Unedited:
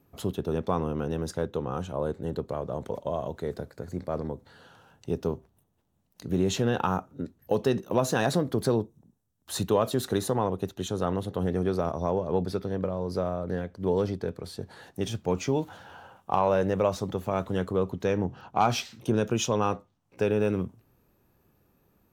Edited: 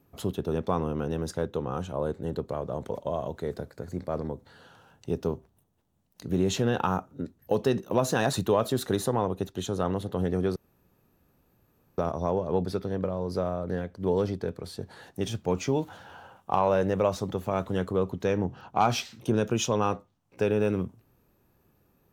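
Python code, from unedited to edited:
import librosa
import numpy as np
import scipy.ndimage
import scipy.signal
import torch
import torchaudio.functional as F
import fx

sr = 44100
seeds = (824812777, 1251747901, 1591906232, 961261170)

y = fx.edit(x, sr, fx.cut(start_s=8.33, length_s=1.22),
    fx.insert_room_tone(at_s=11.78, length_s=1.42), tone=tone)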